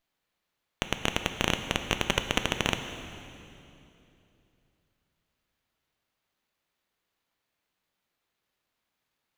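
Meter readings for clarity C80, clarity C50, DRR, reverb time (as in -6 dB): 9.0 dB, 8.5 dB, 7.0 dB, 2.8 s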